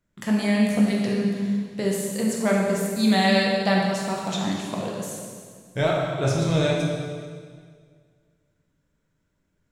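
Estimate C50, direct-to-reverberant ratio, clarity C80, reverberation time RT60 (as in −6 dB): 0.0 dB, −3.0 dB, 2.0 dB, 1.9 s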